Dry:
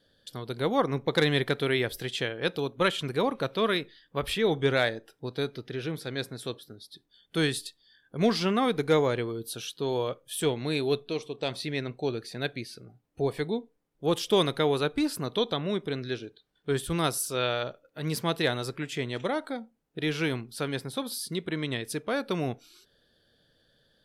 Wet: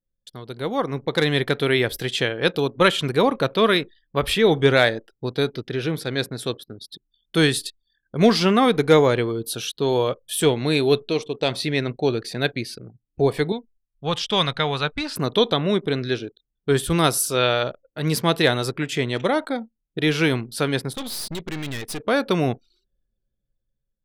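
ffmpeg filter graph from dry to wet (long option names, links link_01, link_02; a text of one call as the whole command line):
ffmpeg -i in.wav -filter_complex "[0:a]asettb=1/sr,asplit=3[link_01][link_02][link_03];[link_01]atrim=end=13.524[link_04];[link_02]atrim=start=13.52:end=15.16,asetpts=PTS-STARTPTS,afade=type=in:duration=0.004:curve=qsin,afade=type=out:start_time=1.636:duration=0.004:curve=qsin,lowpass=5000,equalizer=frequency=350:width_type=o:width=1.3:gain=-14.5[link_05];[link_03]atrim=start=15.156[link_06];[link_04][link_05]acrossfade=duration=0.004:curve1=hsin:curve2=qsin[link_07];[link_07][link_06]acrossfade=duration=0.004:curve1=qsin:curve2=hsin,asettb=1/sr,asplit=3[link_08][link_09][link_10];[link_08]atrim=end=20.934[link_11];[link_09]atrim=start=20.93:end=22,asetpts=PTS-STARTPTS,afade=type=in:duration=0.004:curve=qsin,afade=type=out:start_time=1.066:duration=0.004:curve=qsin,adynamicequalizer=threshold=0.00355:dfrequency=3400:dqfactor=0.74:tfrequency=3400:tqfactor=0.74:attack=5:release=100:ratio=0.375:range=2:mode=boostabove:tftype=bell,aeval=exprs='(tanh(63.1*val(0)+0.65)-tanh(0.65))/63.1':channel_layout=same[link_12];[link_10]atrim=start=21.996[link_13];[link_11][link_12]acrossfade=duration=0.004:curve1=hsin:curve2=qsin[link_14];[link_14][link_13]acrossfade=duration=0.004:curve1=qsin:curve2=hsin,anlmdn=0.00631,dynaudnorm=framelen=580:gausssize=5:maxgain=9dB" out.wav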